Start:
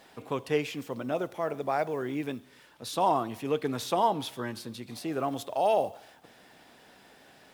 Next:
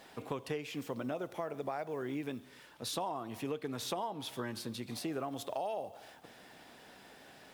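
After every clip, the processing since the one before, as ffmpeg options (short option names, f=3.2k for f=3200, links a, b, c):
-af "acompressor=threshold=-34dB:ratio=10"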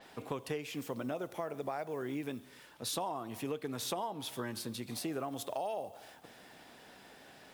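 -af "adynamicequalizer=threshold=0.00112:dfrequency=6500:dqfactor=0.7:tfrequency=6500:tqfactor=0.7:attack=5:release=100:ratio=0.375:range=2.5:mode=boostabove:tftype=highshelf"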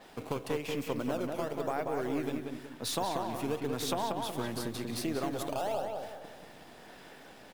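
-filter_complex "[0:a]aeval=exprs='if(lt(val(0),0),0.708*val(0),val(0))':c=same,asplit=2[a][b];[b]acrusher=samples=14:mix=1:aa=0.000001:lfo=1:lforange=22.4:lforate=0.96,volume=-6.5dB[c];[a][c]amix=inputs=2:normalize=0,asplit=2[d][e];[e]adelay=186,lowpass=f=3.3k:p=1,volume=-4dB,asplit=2[f][g];[g]adelay=186,lowpass=f=3.3k:p=1,volume=0.42,asplit=2[h][i];[i]adelay=186,lowpass=f=3.3k:p=1,volume=0.42,asplit=2[j][k];[k]adelay=186,lowpass=f=3.3k:p=1,volume=0.42,asplit=2[l][m];[m]adelay=186,lowpass=f=3.3k:p=1,volume=0.42[n];[d][f][h][j][l][n]amix=inputs=6:normalize=0,volume=1.5dB"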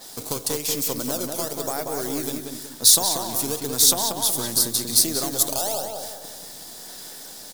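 -af "aexciter=amount=10:drive=4.1:freq=3.9k,volume=4dB"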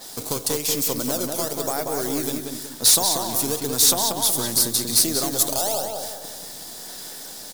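-af "asoftclip=type=tanh:threshold=-11.5dB,volume=2.5dB"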